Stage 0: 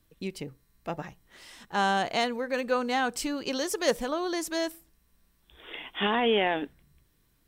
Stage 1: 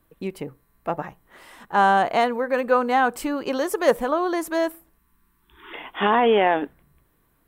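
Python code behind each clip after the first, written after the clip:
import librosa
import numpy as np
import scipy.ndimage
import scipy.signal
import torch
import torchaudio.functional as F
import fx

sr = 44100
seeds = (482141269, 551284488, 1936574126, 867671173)

y = fx.spec_erase(x, sr, start_s=4.99, length_s=0.74, low_hz=420.0, high_hz=850.0)
y = fx.curve_eq(y, sr, hz=(100.0, 1100.0, 5500.0, 12000.0), db=(0, 9, -9, 3))
y = y * librosa.db_to_amplitude(1.5)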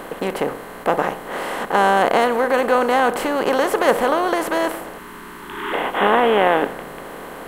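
y = fx.bin_compress(x, sr, power=0.4)
y = y * librosa.db_to_amplitude(-1.5)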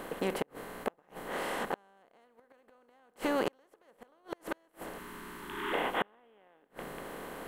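y = fx.peak_eq(x, sr, hz=990.0, db=-2.5, octaves=1.9)
y = fx.gate_flip(y, sr, shuts_db=-10.0, range_db=-38)
y = y * librosa.db_to_amplitude(-8.0)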